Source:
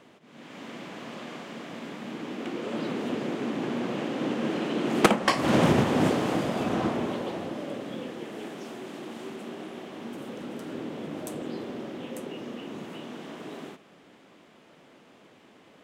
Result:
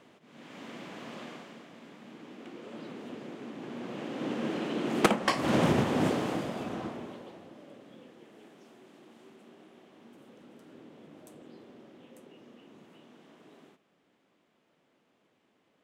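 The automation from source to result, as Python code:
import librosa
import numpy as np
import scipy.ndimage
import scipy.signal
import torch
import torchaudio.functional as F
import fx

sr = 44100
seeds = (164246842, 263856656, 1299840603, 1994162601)

y = fx.gain(x, sr, db=fx.line((1.24, -3.5), (1.71, -12.0), (3.56, -12.0), (4.36, -4.0), (6.19, -4.0), (7.42, -16.0)))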